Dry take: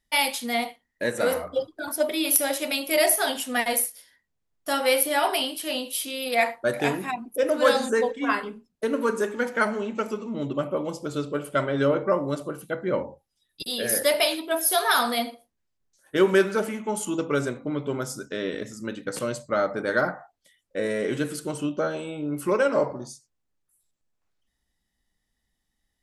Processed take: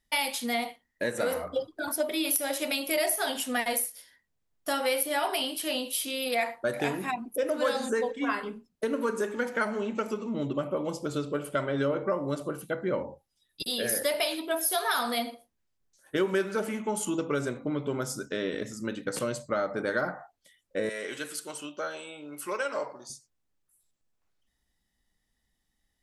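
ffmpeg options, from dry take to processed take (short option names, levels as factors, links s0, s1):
-filter_complex "[0:a]asettb=1/sr,asplit=3[s0][s1][s2];[s0]atrim=end=20.894[s3];[s1]atrim=start=20.89:end=23.1,asetpts=PTS-STARTPTS,afade=t=in:d=0.004:c=qsin,afade=t=out:st=2.206:d=0.004:c=qsin,highpass=f=1500:p=1[s4];[s2]atrim=start=23.096[s5];[s3][s4]acrossfade=d=0.004:c1=hsin:c2=qsin[s6];[s6][s5]acrossfade=d=0.004:c1=qsin:c2=hsin,acompressor=threshold=0.0447:ratio=2.5"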